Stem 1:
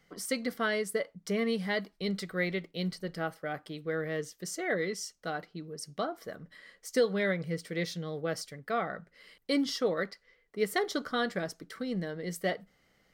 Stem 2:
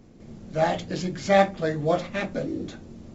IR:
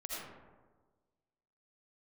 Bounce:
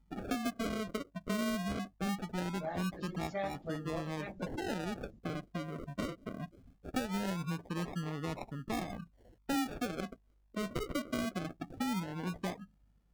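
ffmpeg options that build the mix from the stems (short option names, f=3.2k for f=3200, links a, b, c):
-filter_complex "[0:a]equalizer=f=125:t=o:w=1:g=4,equalizer=f=250:t=o:w=1:g=11,equalizer=f=500:t=o:w=1:g=-11,equalizer=f=1k:t=o:w=1:g=8,equalizer=f=2k:t=o:w=1:g=-10,equalizer=f=4k:t=o:w=1:g=7,equalizer=f=8k:t=o:w=1:g=-6,aeval=exprs='val(0)+0.000708*(sin(2*PI*50*n/s)+sin(2*PI*2*50*n/s)/2+sin(2*PI*3*50*n/s)/3+sin(2*PI*4*50*n/s)/4+sin(2*PI*5*50*n/s)/5)':c=same,acrusher=samples=40:mix=1:aa=0.000001:lfo=1:lforange=24:lforate=0.21,volume=3dB[a];[1:a]bandreject=f=60:t=h:w=6,bandreject=f=120:t=h:w=6,bandreject=f=180:t=h:w=6,bandreject=f=240:t=h:w=6,bandreject=f=300:t=h:w=6,bandreject=f=360:t=h:w=6,bandreject=f=420:t=h:w=6,bandreject=f=480:t=h:w=6,bandreject=f=540:t=h:w=6,adelay=2050,volume=-10dB[b];[a][b]amix=inputs=2:normalize=0,afftdn=nr=16:nf=-44,equalizer=f=120:w=0.45:g=-3,acompressor=threshold=-36dB:ratio=3"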